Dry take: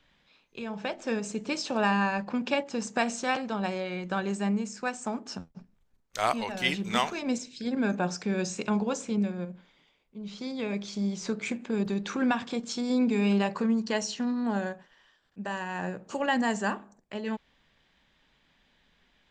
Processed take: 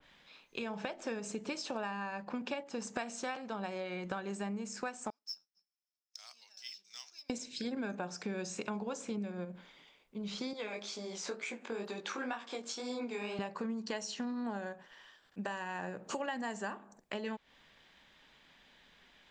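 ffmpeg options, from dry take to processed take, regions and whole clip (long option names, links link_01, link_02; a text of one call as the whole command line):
ffmpeg -i in.wav -filter_complex "[0:a]asettb=1/sr,asplit=3[link_01][link_02][link_03];[link_01]atrim=end=5.104[link_04];[link_02]atrim=start=5.1:end=7.3,asetpts=PTS-STARTPTS,afade=type=in:duration=0.004:curve=qsin,afade=type=out:start_time=2.196:duration=0.004:curve=qsin,bandpass=frequency=5300:width_type=q:width=18,acrusher=bits=6:mode=log:mix=0:aa=0.000001[link_05];[link_03]atrim=start=7.296[link_06];[link_04][link_05]acrossfade=duration=0.004:curve1=hsin:curve2=qsin[link_07];[link_07][link_06]acrossfade=duration=0.004:curve1=qsin:curve2=hsin,asettb=1/sr,asplit=3[link_08][link_09][link_10];[link_08]atrim=end=10.534[link_11];[link_09]atrim=start=10.53:end=13.39,asetpts=PTS-STARTPTS,afade=type=in:duration=0.004:curve=qsin,afade=type=out:start_time=2.856:duration=0.004:curve=qsin,highpass=390,flanger=delay=16.5:depth=5.2:speed=2.1[link_12];[link_10]atrim=start=13.386[link_13];[link_11][link_12]acrossfade=duration=0.004:curve1=hsin:curve2=qsin[link_14];[link_14][link_13]acrossfade=duration=0.004:curve1=qsin:curve2=hsin,lowshelf=frequency=210:gain=-9,acompressor=threshold=-41dB:ratio=6,adynamicequalizer=threshold=0.00158:dfrequency=1900:dqfactor=0.7:tfrequency=1900:tqfactor=0.7:attack=5:release=100:ratio=0.375:range=1.5:mode=cutabove:tftype=highshelf,volume=5dB" out.wav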